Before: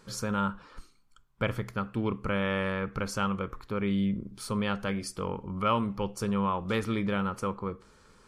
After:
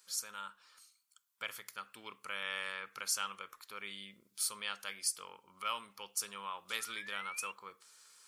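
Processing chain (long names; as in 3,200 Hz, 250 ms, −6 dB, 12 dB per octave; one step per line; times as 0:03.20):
sound drawn into the spectrogram rise, 0:06.79–0:07.52, 1,300–2,800 Hz −44 dBFS
first difference
speech leveller within 4 dB 2 s
low-shelf EQ 470 Hz −8 dB
level +6 dB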